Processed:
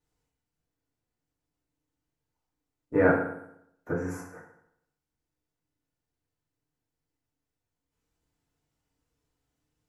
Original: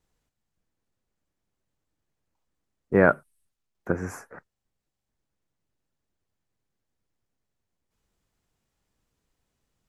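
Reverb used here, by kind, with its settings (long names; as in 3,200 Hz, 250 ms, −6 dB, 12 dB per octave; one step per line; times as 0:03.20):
feedback delay network reverb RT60 0.75 s, low-frequency decay 1.05×, high-frequency decay 0.75×, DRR −6.5 dB
level −10.5 dB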